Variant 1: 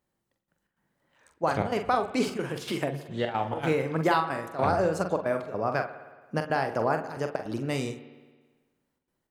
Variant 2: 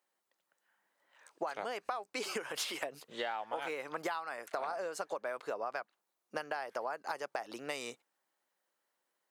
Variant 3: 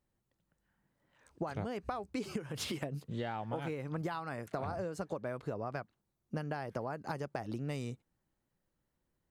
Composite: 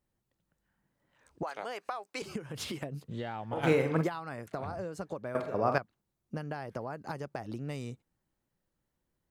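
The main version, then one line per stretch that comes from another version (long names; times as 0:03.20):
3
0:01.43–0:02.22: punch in from 2
0:03.55–0:04.05: punch in from 1, crossfade 0.10 s
0:05.35–0:05.78: punch in from 1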